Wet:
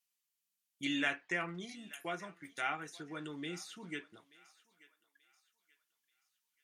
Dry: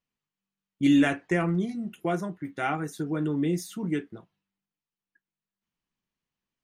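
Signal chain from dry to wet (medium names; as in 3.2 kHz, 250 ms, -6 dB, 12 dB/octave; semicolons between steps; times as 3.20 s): pre-emphasis filter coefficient 0.97; low-pass that closes with the level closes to 2.9 kHz, closed at -44 dBFS; thinning echo 882 ms, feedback 40%, high-pass 920 Hz, level -19 dB; trim +8.5 dB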